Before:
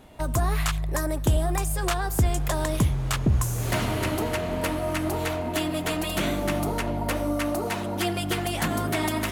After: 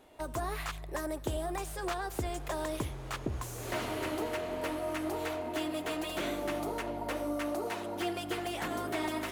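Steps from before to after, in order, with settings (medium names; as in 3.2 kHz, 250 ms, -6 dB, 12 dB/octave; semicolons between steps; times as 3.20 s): resonant low shelf 250 Hz -8 dB, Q 1.5; slew-rate limiter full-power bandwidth 120 Hz; trim -7.5 dB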